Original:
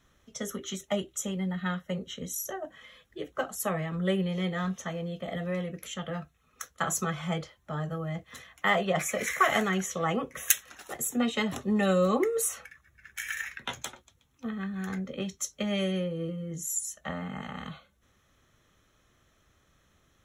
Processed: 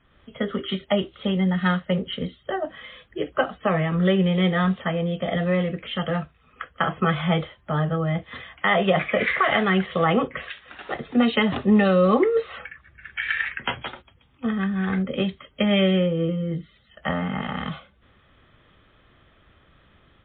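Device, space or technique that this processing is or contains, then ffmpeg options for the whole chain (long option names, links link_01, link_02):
low-bitrate web radio: -af "dynaudnorm=framelen=100:gausssize=3:maxgain=6dB,alimiter=limit=-13dB:level=0:latency=1:release=171,volume=4.5dB" -ar 8000 -c:a libmp3lame -b:a 24k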